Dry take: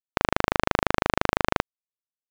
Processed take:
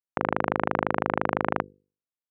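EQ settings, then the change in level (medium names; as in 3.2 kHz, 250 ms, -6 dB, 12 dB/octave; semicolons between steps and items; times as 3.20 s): band-pass 130–2200 Hz; distance through air 440 m; hum notches 50/100/150/200/250/300/350/400/450/500 Hz; 0.0 dB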